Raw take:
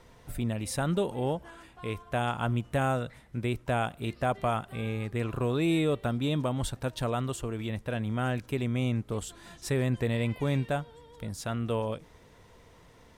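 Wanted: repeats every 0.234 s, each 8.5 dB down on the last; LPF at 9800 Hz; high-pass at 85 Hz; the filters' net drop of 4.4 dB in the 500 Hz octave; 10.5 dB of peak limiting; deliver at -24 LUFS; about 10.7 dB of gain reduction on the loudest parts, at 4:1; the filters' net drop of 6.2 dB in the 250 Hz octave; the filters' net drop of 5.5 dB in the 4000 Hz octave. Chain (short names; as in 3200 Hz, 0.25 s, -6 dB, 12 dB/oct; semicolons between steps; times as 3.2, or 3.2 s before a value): HPF 85 Hz; LPF 9800 Hz; bell 250 Hz -7 dB; bell 500 Hz -3.5 dB; bell 4000 Hz -7 dB; compressor 4:1, threshold -40 dBFS; limiter -35.5 dBFS; feedback echo 0.234 s, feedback 38%, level -8.5 dB; gain +20.5 dB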